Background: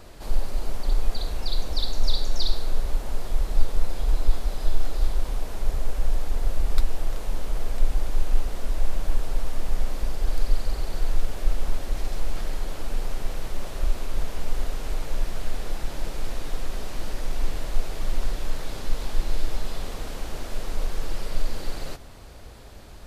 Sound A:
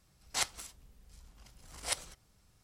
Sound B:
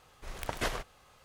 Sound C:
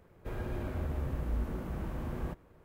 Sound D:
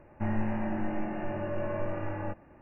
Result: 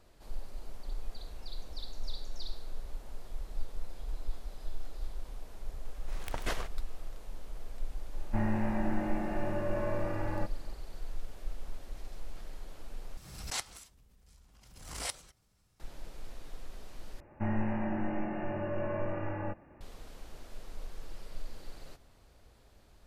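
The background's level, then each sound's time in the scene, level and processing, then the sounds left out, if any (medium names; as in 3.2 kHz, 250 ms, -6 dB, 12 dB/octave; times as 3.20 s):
background -16 dB
5.85 s: add B -3.5 dB
8.13 s: add D -0.5 dB
13.17 s: replace with A -5 dB + swell ahead of each attack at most 54 dB/s
17.20 s: replace with D -1.5 dB
not used: C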